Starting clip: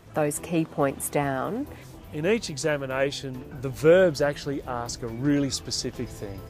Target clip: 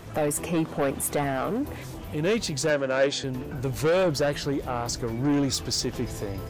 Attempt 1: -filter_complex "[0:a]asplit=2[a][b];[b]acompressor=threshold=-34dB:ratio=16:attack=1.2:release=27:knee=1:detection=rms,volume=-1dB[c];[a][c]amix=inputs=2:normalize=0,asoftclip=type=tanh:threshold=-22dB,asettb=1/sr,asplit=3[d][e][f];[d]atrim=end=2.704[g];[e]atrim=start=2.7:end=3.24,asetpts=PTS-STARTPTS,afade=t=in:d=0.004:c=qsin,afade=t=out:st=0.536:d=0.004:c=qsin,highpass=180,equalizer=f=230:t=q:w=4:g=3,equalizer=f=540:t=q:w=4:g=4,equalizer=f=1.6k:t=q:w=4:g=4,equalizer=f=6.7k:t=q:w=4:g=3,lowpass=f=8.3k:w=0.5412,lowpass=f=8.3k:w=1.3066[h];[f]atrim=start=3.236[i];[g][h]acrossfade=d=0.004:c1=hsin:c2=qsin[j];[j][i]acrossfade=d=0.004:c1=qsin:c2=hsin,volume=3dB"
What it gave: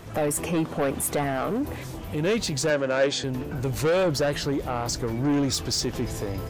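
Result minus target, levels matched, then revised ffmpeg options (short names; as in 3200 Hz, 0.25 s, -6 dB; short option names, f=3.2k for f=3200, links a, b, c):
compressor: peak gain reduction -10 dB
-filter_complex "[0:a]asplit=2[a][b];[b]acompressor=threshold=-44.5dB:ratio=16:attack=1.2:release=27:knee=1:detection=rms,volume=-1dB[c];[a][c]amix=inputs=2:normalize=0,asoftclip=type=tanh:threshold=-22dB,asettb=1/sr,asplit=3[d][e][f];[d]atrim=end=2.704[g];[e]atrim=start=2.7:end=3.24,asetpts=PTS-STARTPTS,afade=t=in:d=0.004:c=qsin,afade=t=out:st=0.536:d=0.004:c=qsin,highpass=180,equalizer=f=230:t=q:w=4:g=3,equalizer=f=540:t=q:w=4:g=4,equalizer=f=1.6k:t=q:w=4:g=4,equalizer=f=6.7k:t=q:w=4:g=3,lowpass=f=8.3k:w=0.5412,lowpass=f=8.3k:w=1.3066[h];[f]atrim=start=3.236[i];[g][h]acrossfade=d=0.004:c1=hsin:c2=qsin[j];[j][i]acrossfade=d=0.004:c1=qsin:c2=hsin,volume=3dB"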